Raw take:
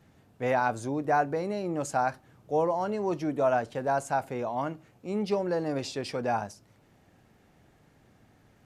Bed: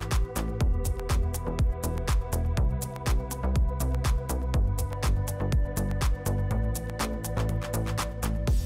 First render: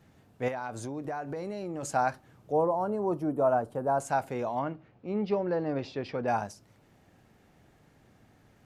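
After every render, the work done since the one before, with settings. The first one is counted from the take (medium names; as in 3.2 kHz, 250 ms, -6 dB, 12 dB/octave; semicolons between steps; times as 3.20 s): 0.48–1.83 s: compression, threshold -32 dBFS; 2.52–4.00 s: high-order bell 3.5 kHz -15 dB 2.3 oct; 4.59–6.28 s: distance through air 250 m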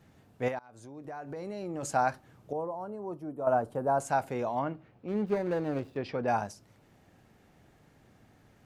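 0.59–1.78 s: fade in, from -23 dB; 2.53–3.47 s: gain -9 dB; 5.08–5.97 s: median filter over 41 samples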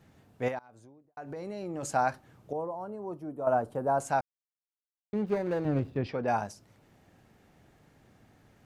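0.56–1.17 s: studio fade out; 4.21–5.13 s: mute; 5.65–6.07 s: tone controls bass +10 dB, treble -5 dB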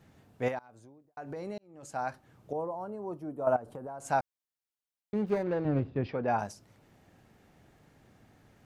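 1.58–2.59 s: fade in; 3.56–4.08 s: compression 16:1, threshold -37 dBFS; 5.43–6.39 s: distance through air 160 m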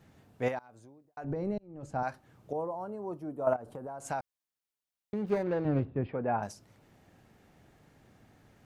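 1.24–2.03 s: tilt EQ -3.5 dB/octave; 3.53–5.25 s: compression, threshold -29 dBFS; 5.85–6.43 s: distance through air 450 m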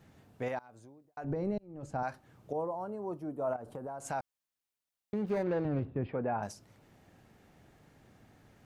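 peak limiter -24.5 dBFS, peak gain reduction 8.5 dB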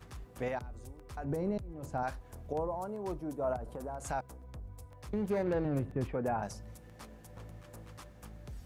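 add bed -21 dB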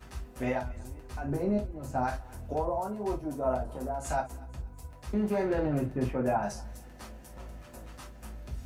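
thinning echo 240 ms, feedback 49%, high-pass 1.1 kHz, level -19.5 dB; gated-style reverb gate 90 ms falling, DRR -3.5 dB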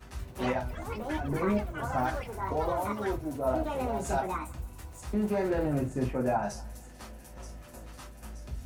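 feedback echo behind a high-pass 927 ms, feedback 56%, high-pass 5.2 kHz, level -7 dB; ever faster or slower copies 114 ms, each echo +7 st, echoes 3, each echo -6 dB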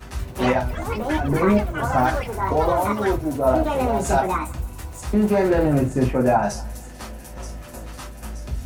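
trim +10.5 dB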